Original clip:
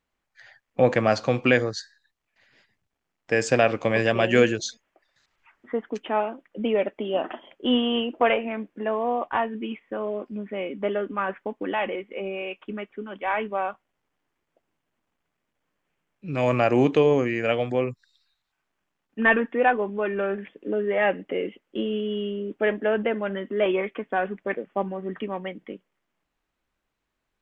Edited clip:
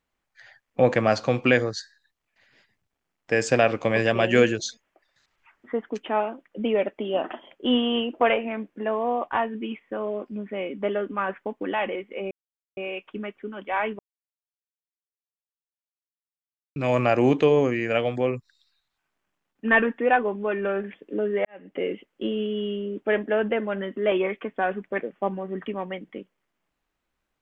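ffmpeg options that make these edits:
-filter_complex "[0:a]asplit=5[s0][s1][s2][s3][s4];[s0]atrim=end=12.31,asetpts=PTS-STARTPTS,afade=t=out:st=12.306:d=0.004:c=hsin,apad=pad_dur=0.46[s5];[s1]atrim=start=12.31:end=13.53,asetpts=PTS-STARTPTS,afade=t=in:d=0.004:c=hsin,afade=t=out:st=1.216:d=0.004:c=hsin[s6];[s2]atrim=start=13.53:end=16.3,asetpts=PTS-STARTPTS,volume=0[s7];[s3]atrim=start=16.3:end=20.99,asetpts=PTS-STARTPTS,afade=t=in:d=0.004:c=hsin,afade=t=out:st=4.686:d=0.004:c=hsin[s8];[s4]atrim=start=20.99,asetpts=PTS-STARTPTS,afade=t=in:d=0.34:c=qua[s9];[s5][s6][s7][s8][s9]concat=n=5:v=0:a=1"

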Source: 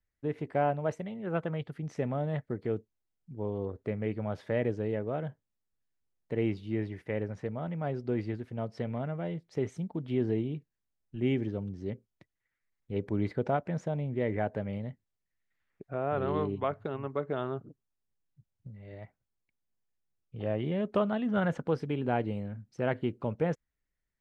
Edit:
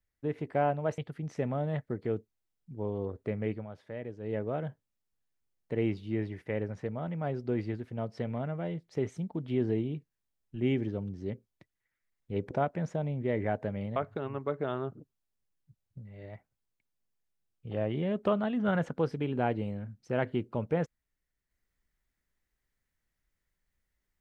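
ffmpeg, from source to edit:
-filter_complex "[0:a]asplit=6[s0][s1][s2][s3][s4][s5];[s0]atrim=end=0.982[s6];[s1]atrim=start=1.578:end=4.27,asetpts=PTS-STARTPTS,afade=t=out:st=2.532:d=0.16:silence=0.298538[s7];[s2]atrim=start=4.27:end=4.8,asetpts=PTS-STARTPTS,volume=0.299[s8];[s3]atrim=start=4.8:end=13.112,asetpts=PTS-STARTPTS,afade=t=in:d=0.16:silence=0.298538[s9];[s4]atrim=start=13.428:end=14.882[s10];[s5]atrim=start=16.648[s11];[s7][s8][s9]concat=n=3:v=0:a=1[s12];[s6][s12]acrossfade=d=0.004:c1=hsin:c2=hsin[s13];[s13][s10]acrossfade=d=0.004:c1=hsin:c2=hsin[s14];[s14][s11]acrossfade=d=0.004:c1=hsin:c2=hsin"

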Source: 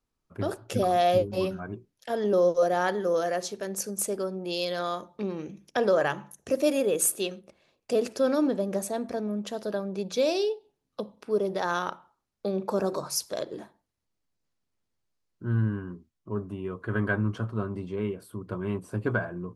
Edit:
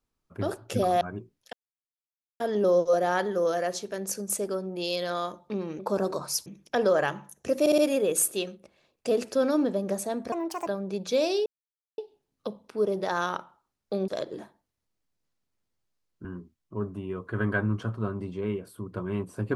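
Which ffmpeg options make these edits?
-filter_complex "[0:a]asplit=13[s0][s1][s2][s3][s4][s5][s6][s7][s8][s9][s10][s11][s12];[s0]atrim=end=1.012[s13];[s1]atrim=start=1.568:end=2.09,asetpts=PTS-STARTPTS,afade=t=out:st=0.518:d=0.004:c=hsin,apad=pad_dur=0.87[s14];[s2]atrim=start=2.09:end=5.482,asetpts=PTS-STARTPTS,afade=t=in:d=0.004:c=hsin[s15];[s3]atrim=start=12.608:end=13.282[s16];[s4]atrim=start=5.478:end=6.682[s17];[s5]atrim=start=6.618:end=6.682[s18];[s6]atrim=start=6.618:end=6.682[s19];[s7]atrim=start=6.618:end=9.164[s20];[s8]atrim=start=9.16:end=9.72,asetpts=PTS-STARTPTS,asetrate=70560,aresample=44100[s21];[s9]atrim=start=9.716:end=10.51,asetpts=PTS-STARTPTS,afade=t=out:st=0.79:d=0.004:c=hsin,apad=pad_dur=0.52[s22];[s10]atrim=start=10.51:end=12.612,asetpts=PTS-STARTPTS,afade=t=in:d=0.004:c=hsin[s23];[s11]atrim=start=13.278:end=15.452[s24];[s12]atrim=start=15.798[s25];[s14][s15]concat=n=2:v=0:a=1[s26];[s13][s26]acrossfade=d=0.004:c1=hsin:c2=hsin[s27];[s27][s16]acrossfade=d=0.004:c1=hsin:c2=hsin[s28];[s28][s17]acrossfade=d=0.004:c1=hsin:c2=hsin[s29];[s29][s18]acrossfade=d=0.004:c1=hsin:c2=hsin[s30];[s30][s19]acrossfade=d=0.004:c1=hsin:c2=hsin[s31];[s31][s20]acrossfade=d=0.004:c1=hsin:c2=hsin[s32];[s32][s21]acrossfade=d=0.004:c1=hsin:c2=hsin[s33];[s22][s23]concat=n=2:v=0:a=1[s34];[s33][s34]acrossfade=d=0.004:c1=hsin:c2=hsin[s35];[s35][s24]acrossfade=d=0.004:c1=hsin:c2=hsin[s36];[s36][s25]acrossfade=d=0.004:c1=hsin:c2=hsin"

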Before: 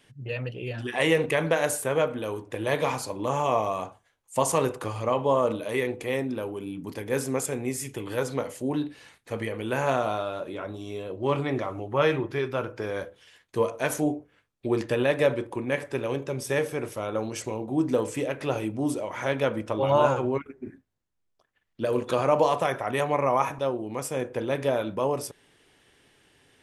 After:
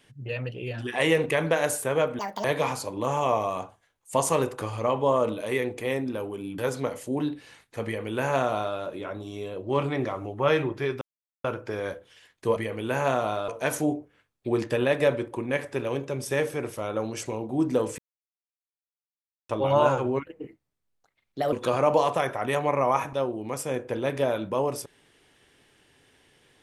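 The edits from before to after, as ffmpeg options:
-filter_complex "[0:a]asplit=11[s0][s1][s2][s3][s4][s5][s6][s7][s8][s9][s10];[s0]atrim=end=2.194[s11];[s1]atrim=start=2.19:end=2.67,asetpts=PTS-STARTPTS,asetrate=83790,aresample=44100,atrim=end_sample=11141,asetpts=PTS-STARTPTS[s12];[s2]atrim=start=2.666:end=6.812[s13];[s3]atrim=start=8.118:end=12.55,asetpts=PTS-STARTPTS,afade=t=out:st=4.428:d=0.004:c=hsin,apad=pad_dur=0.43[s14];[s4]atrim=start=12.55:end=13.672,asetpts=PTS-STARTPTS,afade=t=in:d=0.004:c=hsin[s15];[s5]atrim=start=9.378:end=10.302[s16];[s6]atrim=start=13.668:end=18.17,asetpts=PTS-STARTPTS,afade=t=out:st=4.498:d=0.004:c=hsin[s17];[s7]atrim=start=18.17:end=19.68,asetpts=PTS-STARTPTS,volume=0[s18];[s8]atrim=start=19.68:end=20.444,asetpts=PTS-STARTPTS,afade=t=in:d=0.004:c=hsin[s19];[s9]atrim=start=20.44:end=21.98,asetpts=PTS-STARTPTS,asetrate=53361,aresample=44100,atrim=end_sample=56127,asetpts=PTS-STARTPTS[s20];[s10]atrim=start=21.976[s21];[s11][s12]acrossfade=d=0.004:c1=hsin:c2=hsin[s22];[s22][s13]acrossfade=d=0.004:c1=hsin:c2=hsin[s23];[s14][s15]concat=n=2:v=0:a=1[s24];[s23][s24]acrossfade=d=0.004:c1=hsin:c2=hsin[s25];[s25][s16]acrossfade=d=0.004:c1=hsin:c2=hsin[s26];[s17][s18][s19]concat=n=3:v=0:a=1[s27];[s26][s27]acrossfade=d=0.004:c1=hsin:c2=hsin[s28];[s28][s20]acrossfade=d=0.004:c1=hsin:c2=hsin[s29];[s29][s21]acrossfade=d=0.004:c1=hsin:c2=hsin"

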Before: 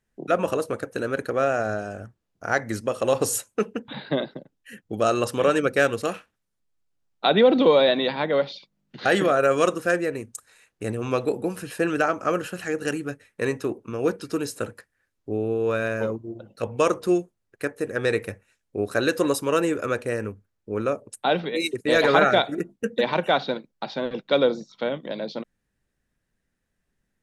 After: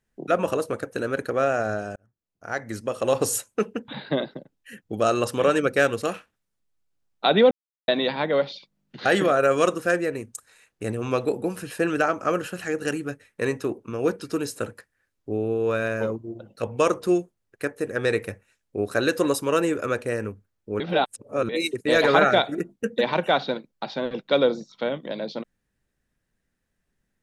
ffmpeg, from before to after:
-filter_complex "[0:a]asplit=6[s0][s1][s2][s3][s4][s5];[s0]atrim=end=1.96,asetpts=PTS-STARTPTS,afade=t=out:st=1.956:d=0.004:c=hsin[s6];[s1]atrim=start=1.96:end=7.51,asetpts=PTS-STARTPTS,afade=t=in:d=1.2,afade=t=out:st=5.546:d=0.004:c=hsin[s7];[s2]atrim=start=7.51:end=7.88,asetpts=PTS-STARTPTS,volume=0[s8];[s3]atrim=start=7.88:end=20.802,asetpts=PTS-STARTPTS,afade=t=in:d=0.004:c=hsin[s9];[s4]atrim=start=20.798:end=21.492,asetpts=PTS-STARTPTS,areverse[s10];[s5]atrim=start=21.488[s11];[s6][s7][s8][s9]concat=n=4:v=0:a=1[s12];[s12][s10]acrossfade=d=0.004:c1=hsin:c2=hsin[s13];[s13][s11]acrossfade=d=0.004:c1=hsin:c2=hsin"

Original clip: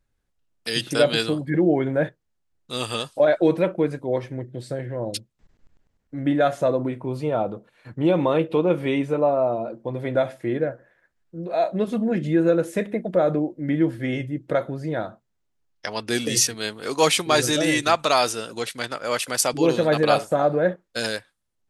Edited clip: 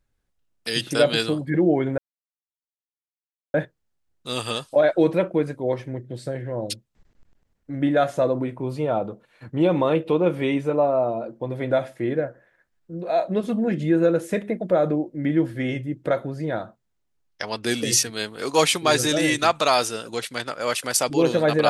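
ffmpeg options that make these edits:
-filter_complex "[0:a]asplit=2[s0][s1];[s0]atrim=end=1.98,asetpts=PTS-STARTPTS,afade=t=out:st=1.976:d=0.004:c=hsin,apad=pad_dur=1.56[s2];[s1]atrim=start=1.98,asetpts=PTS-STARTPTS,afade=t=in:d=0.004:c=hsin[s3];[s2][s3]concat=n=2:v=0:a=1"

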